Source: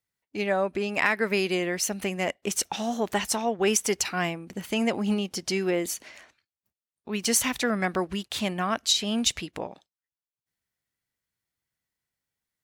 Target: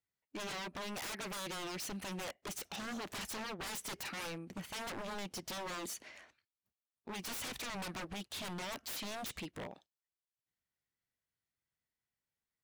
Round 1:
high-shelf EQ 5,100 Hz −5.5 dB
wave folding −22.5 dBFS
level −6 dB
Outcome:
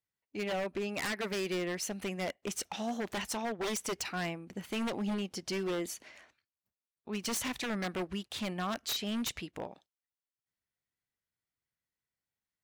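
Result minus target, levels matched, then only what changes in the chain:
wave folding: distortion −19 dB
change: wave folding −31 dBFS

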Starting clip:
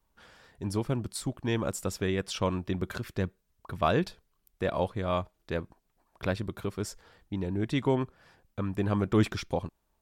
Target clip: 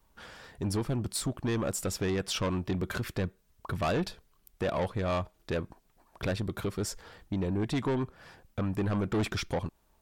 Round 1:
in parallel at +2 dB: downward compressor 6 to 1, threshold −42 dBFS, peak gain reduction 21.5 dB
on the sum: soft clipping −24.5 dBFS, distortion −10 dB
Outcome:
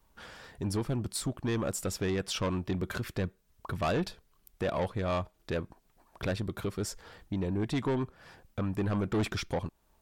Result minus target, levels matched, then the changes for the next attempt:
downward compressor: peak gain reduction +6 dB
change: downward compressor 6 to 1, threshold −34.5 dBFS, peak gain reduction 15 dB

